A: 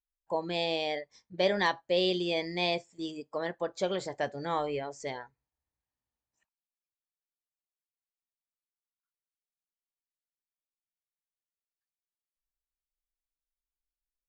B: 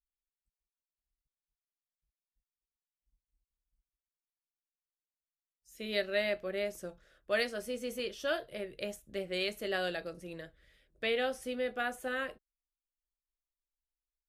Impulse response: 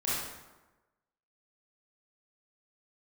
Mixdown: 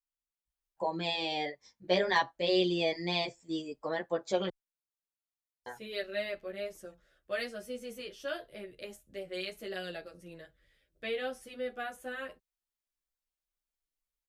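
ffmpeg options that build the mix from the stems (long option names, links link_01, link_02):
-filter_complex "[0:a]adelay=500,volume=2.5dB,asplit=3[link_01][link_02][link_03];[link_01]atrim=end=4.49,asetpts=PTS-STARTPTS,afade=type=out:start_time=4.486:duration=0.004:curve=hsin[link_04];[link_02]atrim=start=4.49:end=5.66,asetpts=PTS-STARTPTS,volume=0[link_05];[link_03]atrim=start=5.66,asetpts=PTS-STARTPTS,afade=type=in:duration=0.004:curve=hsin[link_06];[link_04][link_05][link_06]concat=n=3:v=0:a=1[link_07];[1:a]volume=-1.5dB[link_08];[link_07][link_08]amix=inputs=2:normalize=0,asplit=2[link_09][link_10];[link_10]adelay=10.3,afreqshift=-2.8[link_11];[link_09][link_11]amix=inputs=2:normalize=1"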